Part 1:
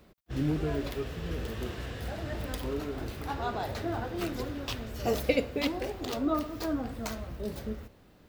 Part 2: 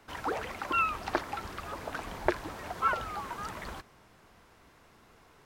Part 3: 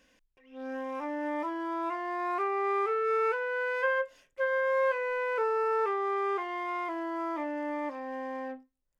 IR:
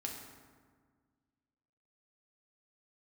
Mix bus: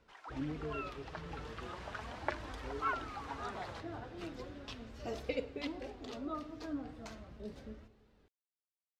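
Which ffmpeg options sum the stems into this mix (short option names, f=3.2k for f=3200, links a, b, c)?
-filter_complex "[0:a]volume=-8dB,asplit=2[a][b];[b]volume=-13dB[c];[1:a]highpass=590,volume=-2dB,afade=t=in:st=1.17:d=0.56:silence=0.375837[d];[3:a]atrim=start_sample=2205[e];[c][e]afir=irnorm=-1:irlink=0[f];[a][d][f]amix=inputs=3:normalize=0,lowpass=6.2k,flanger=delay=2:depth=5.1:regen=54:speed=0.37:shape=triangular"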